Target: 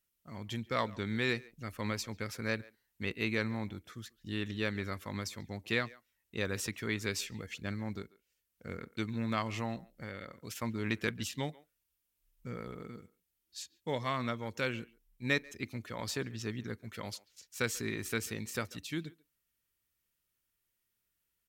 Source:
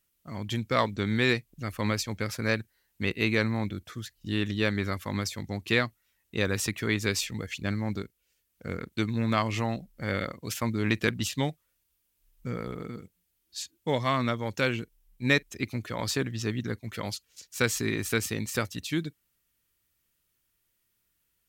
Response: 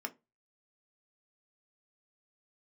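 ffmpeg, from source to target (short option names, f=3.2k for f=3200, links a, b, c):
-filter_complex "[0:a]asettb=1/sr,asplit=3[a][b][c];[a]atrim=end=9.874[d];[b]atrim=start=9.87:end=10.56,asetpts=PTS-STARTPTS,afade=t=in:d=0.004:c=qsin,afade=t=out:st=0.686:d=0.004:c=qsin,acompressor=threshold=-32dB:ratio=6[e];[c]atrim=start=10.556[f];[d][e]acrossfade=d=0.004:c1=hsin:c2=qsin[g];[g][f]acrossfade=d=0.004:c1=qsin:c2=hsin,asplit=2[h][i];[i]adelay=140,highpass=300,lowpass=3.4k,asoftclip=type=hard:threshold=-17dB,volume=-21dB[j];[h][j]amix=inputs=2:normalize=0,asplit=2[k][l];[1:a]atrim=start_sample=2205[m];[l][m]afir=irnorm=-1:irlink=0,volume=-16dB[n];[k][n]amix=inputs=2:normalize=0,volume=-8dB"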